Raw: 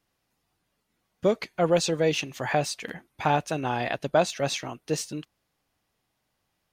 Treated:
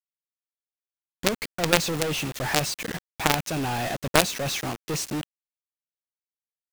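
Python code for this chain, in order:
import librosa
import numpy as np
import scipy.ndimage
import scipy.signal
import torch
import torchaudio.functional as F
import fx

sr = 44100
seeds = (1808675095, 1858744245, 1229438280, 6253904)

y = fx.rattle_buzz(x, sr, strikes_db=-30.0, level_db=-26.0)
y = fx.quant_companded(y, sr, bits=2)
y = fx.low_shelf(y, sr, hz=360.0, db=3.0)
y = y * 10.0 ** (-2.5 / 20.0)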